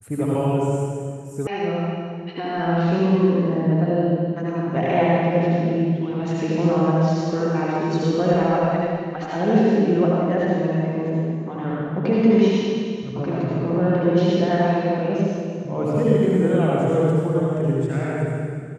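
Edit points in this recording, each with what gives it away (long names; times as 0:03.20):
0:01.47: cut off before it has died away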